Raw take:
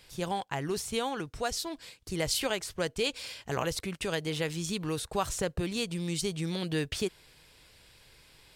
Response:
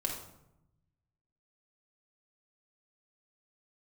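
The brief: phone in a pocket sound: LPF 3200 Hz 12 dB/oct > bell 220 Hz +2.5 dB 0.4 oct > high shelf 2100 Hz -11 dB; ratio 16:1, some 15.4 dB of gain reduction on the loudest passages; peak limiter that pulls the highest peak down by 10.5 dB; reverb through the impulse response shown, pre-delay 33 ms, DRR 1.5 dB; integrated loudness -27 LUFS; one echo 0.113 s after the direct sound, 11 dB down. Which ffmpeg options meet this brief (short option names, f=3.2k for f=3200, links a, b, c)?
-filter_complex "[0:a]acompressor=threshold=-41dB:ratio=16,alimiter=level_in=14dB:limit=-24dB:level=0:latency=1,volume=-14dB,aecho=1:1:113:0.282,asplit=2[a][b];[1:a]atrim=start_sample=2205,adelay=33[c];[b][c]afir=irnorm=-1:irlink=0,volume=-5dB[d];[a][d]amix=inputs=2:normalize=0,lowpass=3.2k,equalizer=f=220:t=o:w=0.4:g=2.5,highshelf=f=2.1k:g=-11,volume=20.5dB"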